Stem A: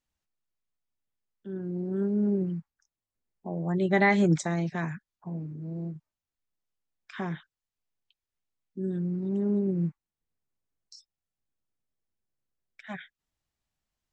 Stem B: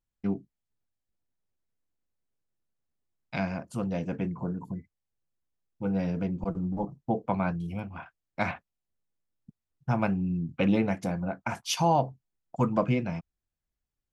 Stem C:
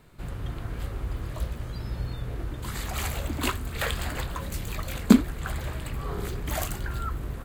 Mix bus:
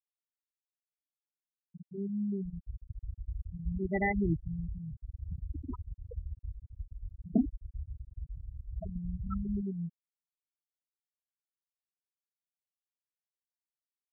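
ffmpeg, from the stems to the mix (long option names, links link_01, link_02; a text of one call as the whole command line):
ffmpeg -i stem1.wav -i stem2.wav -i stem3.wav -filter_complex "[0:a]volume=-7dB[link_01];[1:a]highpass=frequency=300:width=0.5412,highpass=frequency=300:width=1.3066,aeval=exprs='val(0)*sin(2*PI*630*n/s+630*0.6/1.3*sin(2*PI*1.3*n/s))':channel_layout=same,adelay=200,volume=-16dB[link_02];[2:a]asoftclip=type=tanh:threshold=-14dB,adelay=2250,volume=-5dB[link_03];[link_01][link_02][link_03]amix=inputs=3:normalize=0,afftfilt=real='re*gte(hypot(re,im),0.141)':imag='im*gte(hypot(re,im),0.141)':win_size=1024:overlap=0.75" out.wav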